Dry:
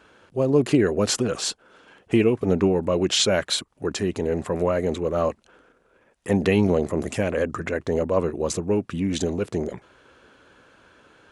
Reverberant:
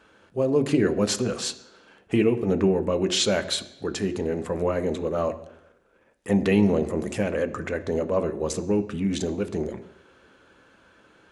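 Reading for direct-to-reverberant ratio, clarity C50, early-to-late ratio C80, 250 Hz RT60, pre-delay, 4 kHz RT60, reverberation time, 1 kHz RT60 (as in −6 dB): 8.5 dB, 14.5 dB, 16.5 dB, 0.80 s, 3 ms, 0.85 s, 0.80 s, 0.80 s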